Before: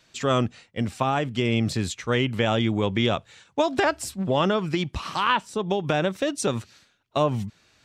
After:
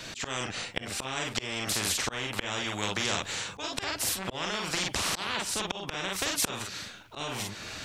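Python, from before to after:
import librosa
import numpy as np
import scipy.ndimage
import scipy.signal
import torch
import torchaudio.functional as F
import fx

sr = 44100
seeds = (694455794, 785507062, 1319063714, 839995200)

p1 = fx.room_early_taps(x, sr, ms=(38, 48), db=(-6.0, -7.0))
p2 = fx.rider(p1, sr, range_db=4, speed_s=2.0)
p3 = p1 + (p2 * librosa.db_to_amplitude(-2.5))
p4 = fx.auto_swell(p3, sr, attack_ms=555.0)
p5 = fx.spectral_comp(p4, sr, ratio=4.0)
y = p5 * librosa.db_to_amplitude(-6.5)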